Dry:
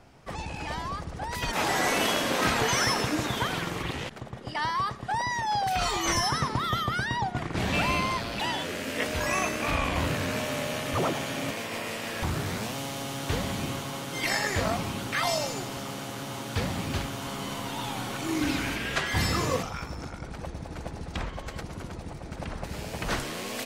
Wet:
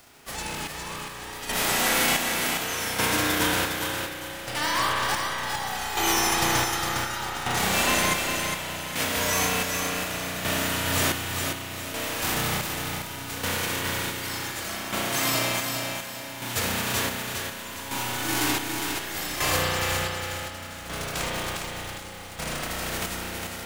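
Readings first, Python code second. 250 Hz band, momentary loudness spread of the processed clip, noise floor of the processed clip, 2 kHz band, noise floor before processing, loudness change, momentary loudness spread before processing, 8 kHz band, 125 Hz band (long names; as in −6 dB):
−0.5 dB, 11 LU, −38 dBFS, +3.5 dB, −41 dBFS, +3.5 dB, 13 LU, +7.5 dB, −2.0 dB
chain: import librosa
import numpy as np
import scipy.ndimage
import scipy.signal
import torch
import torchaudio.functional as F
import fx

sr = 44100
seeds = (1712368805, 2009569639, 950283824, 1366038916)

p1 = fx.envelope_flatten(x, sr, power=0.3)
p2 = fx.rev_spring(p1, sr, rt60_s=3.5, pass_ms=(33,), chirp_ms=65, drr_db=-4.5)
p3 = fx.chopper(p2, sr, hz=0.67, depth_pct=65, duty_pct=45)
y = p3 + fx.echo_feedback(p3, sr, ms=408, feedback_pct=35, wet_db=-5.0, dry=0)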